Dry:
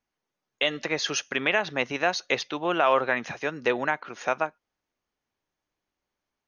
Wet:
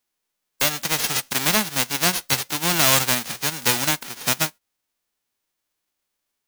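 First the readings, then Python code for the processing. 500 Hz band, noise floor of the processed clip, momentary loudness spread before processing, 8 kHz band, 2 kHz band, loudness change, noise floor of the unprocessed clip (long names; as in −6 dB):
−4.0 dB, −80 dBFS, 7 LU, +16.5 dB, +2.0 dB, +6.5 dB, below −85 dBFS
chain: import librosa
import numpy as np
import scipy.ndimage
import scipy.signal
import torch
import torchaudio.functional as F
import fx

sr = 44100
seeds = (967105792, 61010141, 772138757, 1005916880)

p1 = fx.envelope_flatten(x, sr, power=0.1)
p2 = (np.mod(10.0 ** (17.5 / 20.0) * p1 + 1.0, 2.0) - 1.0) / 10.0 ** (17.5 / 20.0)
p3 = p1 + (p2 * 10.0 ** (-11.0 / 20.0))
y = p3 * 10.0 ** (3.5 / 20.0)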